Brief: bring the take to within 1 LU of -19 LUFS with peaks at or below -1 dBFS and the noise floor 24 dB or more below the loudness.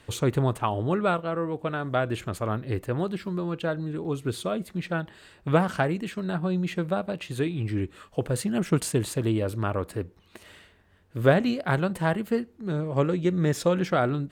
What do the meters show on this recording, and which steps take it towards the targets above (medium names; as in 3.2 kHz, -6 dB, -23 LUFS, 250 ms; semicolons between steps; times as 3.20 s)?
loudness -27.5 LUFS; peak level -7.5 dBFS; loudness target -19.0 LUFS
-> trim +8.5 dB; peak limiter -1 dBFS